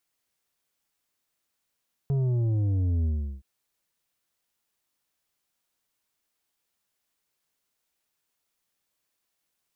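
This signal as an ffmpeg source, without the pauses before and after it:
-f lavfi -i "aevalsrc='0.0708*clip((1.32-t)/0.37,0,1)*tanh(2.37*sin(2*PI*140*1.32/log(65/140)*(exp(log(65/140)*t/1.32)-1)))/tanh(2.37)':d=1.32:s=44100"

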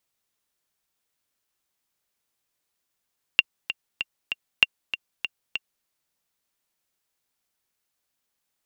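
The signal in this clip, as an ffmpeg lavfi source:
-f lavfi -i "aevalsrc='pow(10,(-1.5-12*gte(mod(t,4*60/194),60/194))/20)*sin(2*PI*2770*mod(t,60/194))*exp(-6.91*mod(t,60/194)/0.03)':d=2.47:s=44100"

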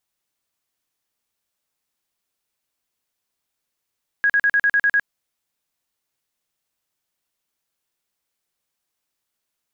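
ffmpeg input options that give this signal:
-f lavfi -i "aevalsrc='0.211*sin(2*PI*1650*mod(t,0.1))*lt(mod(t,0.1),94/1650)':d=0.8:s=44100"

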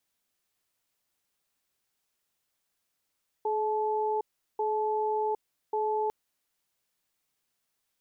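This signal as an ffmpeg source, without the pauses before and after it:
-f lavfi -i "aevalsrc='0.0376*(sin(2*PI*427*t)+sin(2*PI*866*t))*clip(min(mod(t,1.14),0.76-mod(t,1.14))/0.005,0,1)':d=2.65:s=44100"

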